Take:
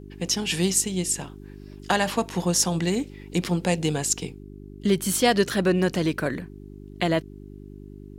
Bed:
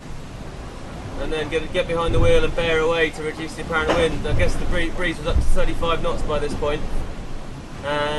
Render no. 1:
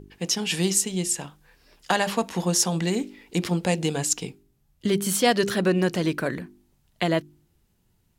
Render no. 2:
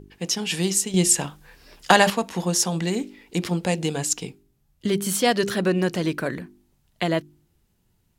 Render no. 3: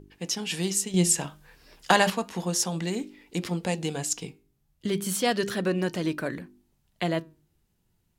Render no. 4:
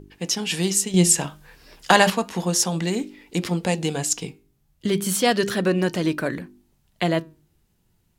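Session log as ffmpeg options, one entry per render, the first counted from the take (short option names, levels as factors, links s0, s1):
-af "bandreject=f=50:t=h:w=4,bandreject=f=100:t=h:w=4,bandreject=f=150:t=h:w=4,bandreject=f=200:t=h:w=4,bandreject=f=250:t=h:w=4,bandreject=f=300:t=h:w=4,bandreject=f=350:t=h:w=4,bandreject=f=400:t=h:w=4"
-filter_complex "[0:a]asplit=3[s0][s1][s2];[s0]atrim=end=0.942[s3];[s1]atrim=start=0.938:end=2.102,asetpts=PTS-STARTPTS,volume=2.37[s4];[s2]atrim=start=2.098[s5];[s3][s4]acrossfade=d=0.004:c1=hsin:c2=hsin[s6];[s6][s5]acrossfade=d=0.004:c1=hsin:c2=hsin"
-af "flanger=delay=3.2:depth=3.3:regen=88:speed=0.33:shape=sinusoidal"
-af "volume=1.88,alimiter=limit=0.794:level=0:latency=1"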